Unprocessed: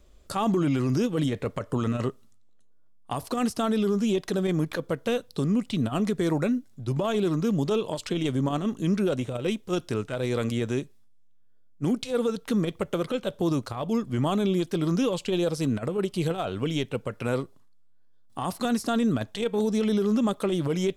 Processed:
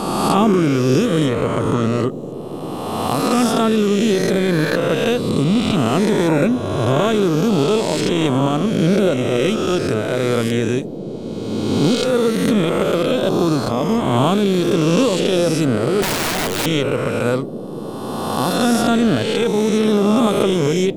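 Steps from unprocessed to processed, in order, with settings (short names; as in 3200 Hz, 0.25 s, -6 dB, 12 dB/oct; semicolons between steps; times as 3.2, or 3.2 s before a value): spectral swells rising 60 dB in 1.82 s; 16.02–16.66 wrapped overs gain 22 dB; band noise 130–510 Hz -35 dBFS; gain +6.5 dB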